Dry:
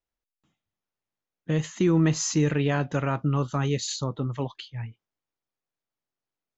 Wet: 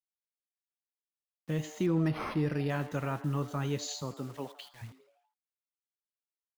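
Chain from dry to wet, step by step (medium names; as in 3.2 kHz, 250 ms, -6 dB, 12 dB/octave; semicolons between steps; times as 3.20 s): 4.02–4.81 s: high-pass 120 Hz -> 410 Hz 12 dB/octave; bit crusher 8-bit; frequency-shifting echo 83 ms, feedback 56%, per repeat +150 Hz, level -16.5 dB; 1.86–2.70 s: decimation joined by straight lines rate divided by 6×; trim -7.5 dB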